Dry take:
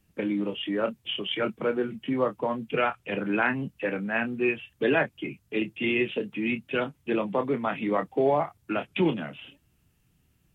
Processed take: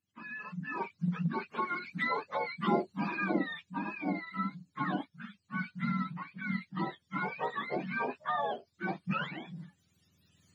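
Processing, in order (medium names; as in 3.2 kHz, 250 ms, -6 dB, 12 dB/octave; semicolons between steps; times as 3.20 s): spectrum inverted on a logarithmic axis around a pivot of 710 Hz; Doppler pass-by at 2.76 s, 14 m/s, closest 7.3 m; recorder AGC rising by 10 dB/s; trim -2.5 dB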